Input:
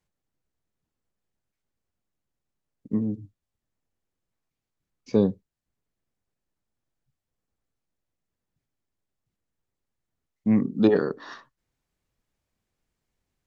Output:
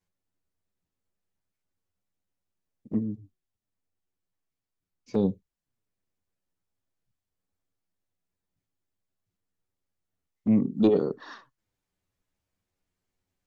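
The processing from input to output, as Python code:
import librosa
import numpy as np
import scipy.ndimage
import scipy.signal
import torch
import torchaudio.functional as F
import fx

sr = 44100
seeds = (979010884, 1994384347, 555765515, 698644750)

y = fx.env_flanger(x, sr, rest_ms=10.9, full_db=-20.0)
y = 10.0 ** (-10.0 / 20.0) * np.tanh(y / 10.0 ** (-10.0 / 20.0))
y = fx.comb_fb(y, sr, f0_hz=370.0, decay_s=0.72, harmonics='all', damping=0.0, mix_pct=30, at=(2.98, 5.23), fade=0.02)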